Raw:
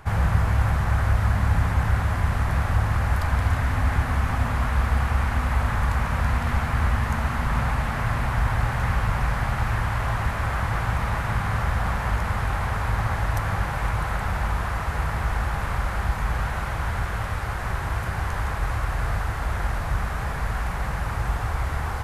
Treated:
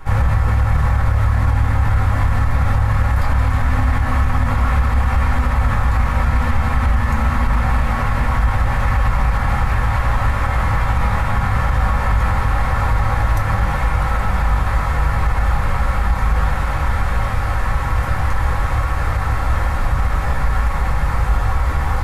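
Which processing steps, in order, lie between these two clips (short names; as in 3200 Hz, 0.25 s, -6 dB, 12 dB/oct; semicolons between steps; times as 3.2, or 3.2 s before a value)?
reverb RT60 0.20 s, pre-delay 3 ms, DRR -2.5 dB; limiter -7.5 dBFS, peak gain reduction 8.5 dB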